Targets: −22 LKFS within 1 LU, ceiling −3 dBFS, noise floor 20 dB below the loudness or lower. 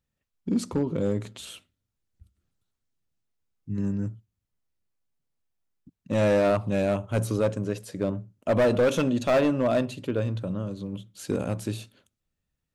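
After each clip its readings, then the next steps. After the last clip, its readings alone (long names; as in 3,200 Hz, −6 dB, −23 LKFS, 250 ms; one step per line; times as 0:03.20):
share of clipped samples 1.2%; peaks flattened at −17.0 dBFS; integrated loudness −26.5 LKFS; sample peak −17.0 dBFS; target loudness −22.0 LKFS
→ clipped peaks rebuilt −17 dBFS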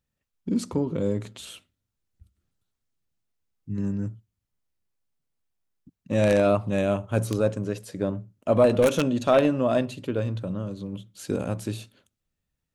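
share of clipped samples 0.0%; integrated loudness −25.5 LKFS; sample peak −8.0 dBFS; target loudness −22.0 LKFS
→ level +3.5 dB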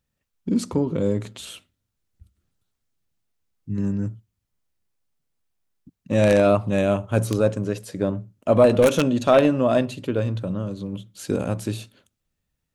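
integrated loudness −22.0 LKFS; sample peak −4.5 dBFS; background noise floor −80 dBFS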